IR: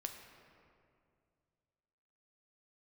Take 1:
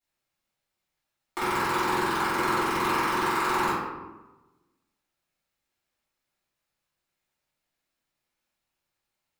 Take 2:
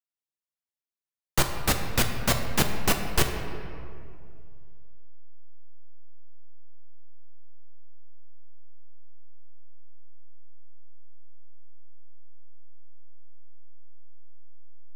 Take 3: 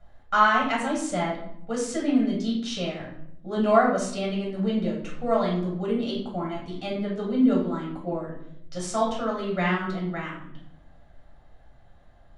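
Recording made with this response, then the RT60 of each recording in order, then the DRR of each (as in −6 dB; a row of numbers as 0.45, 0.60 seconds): 2; 1.1, 2.3, 0.70 seconds; −14.5, 4.0, −4.5 decibels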